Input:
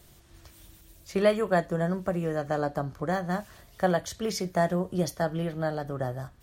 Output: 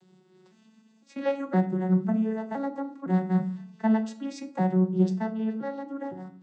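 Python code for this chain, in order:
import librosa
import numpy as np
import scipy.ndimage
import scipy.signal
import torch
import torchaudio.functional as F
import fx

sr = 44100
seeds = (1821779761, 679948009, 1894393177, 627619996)

y = fx.vocoder_arp(x, sr, chord='minor triad', root=54, every_ms=509)
y = fx.peak_eq(y, sr, hz=580.0, db=-11.0, octaves=0.34)
y = fx.room_shoebox(y, sr, seeds[0], volume_m3=630.0, walls='furnished', distance_m=0.89)
y = y * 10.0 ** (2.0 / 20.0)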